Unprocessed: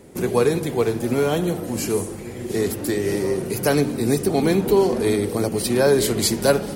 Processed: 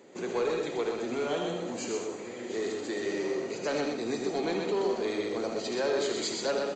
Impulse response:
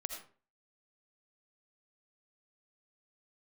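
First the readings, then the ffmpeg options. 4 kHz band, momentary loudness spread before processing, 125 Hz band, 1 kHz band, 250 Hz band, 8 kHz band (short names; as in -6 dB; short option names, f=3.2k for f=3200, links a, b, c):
-8.0 dB, 7 LU, -21.0 dB, -8.5 dB, -12.5 dB, -13.0 dB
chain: -filter_complex "[0:a]flanger=delay=7.8:depth=4.6:regen=84:speed=1.7:shape=triangular,highpass=310,highshelf=f=3.9k:g=10,bandreject=f=5.4k:w=5.9,asplit=2[a][b];[b]acompressor=threshold=-33dB:ratio=6,volume=0dB[c];[a][c]amix=inputs=2:normalize=0,aemphasis=mode=reproduction:type=cd,asoftclip=type=tanh:threshold=-15.5dB,aecho=1:1:126:0.631[d];[1:a]atrim=start_sample=2205,atrim=end_sample=3969[e];[d][e]afir=irnorm=-1:irlink=0,aresample=16000,aresample=44100,volume=-5dB"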